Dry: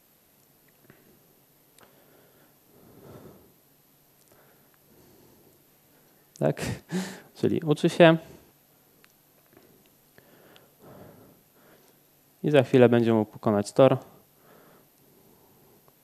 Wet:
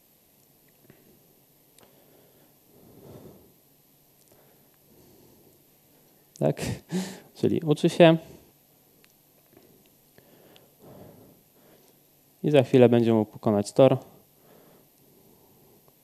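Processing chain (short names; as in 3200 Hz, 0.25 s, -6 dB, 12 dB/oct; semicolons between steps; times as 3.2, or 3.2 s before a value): bell 1400 Hz -10 dB 0.66 oct; gain +1 dB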